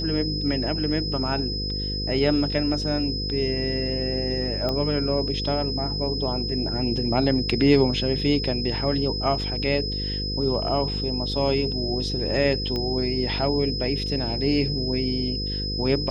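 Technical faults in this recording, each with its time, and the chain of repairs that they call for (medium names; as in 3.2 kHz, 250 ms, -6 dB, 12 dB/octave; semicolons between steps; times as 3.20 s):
buzz 50 Hz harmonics 10 -30 dBFS
whine 5.1 kHz -29 dBFS
4.69 s: pop -14 dBFS
12.76 s: pop -16 dBFS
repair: de-click; de-hum 50 Hz, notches 10; band-stop 5.1 kHz, Q 30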